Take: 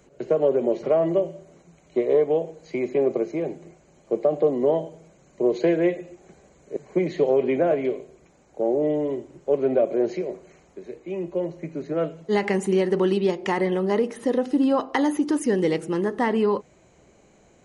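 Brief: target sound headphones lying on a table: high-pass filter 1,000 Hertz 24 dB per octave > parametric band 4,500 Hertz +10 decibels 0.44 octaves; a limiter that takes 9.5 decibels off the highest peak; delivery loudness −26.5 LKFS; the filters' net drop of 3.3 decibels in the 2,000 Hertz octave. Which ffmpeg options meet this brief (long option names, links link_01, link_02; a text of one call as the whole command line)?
ffmpeg -i in.wav -af "equalizer=frequency=2000:width_type=o:gain=-4,alimiter=limit=-18.5dB:level=0:latency=1,highpass=frequency=1000:width=0.5412,highpass=frequency=1000:width=1.3066,equalizer=frequency=4500:width_type=o:width=0.44:gain=10,volume=15.5dB" out.wav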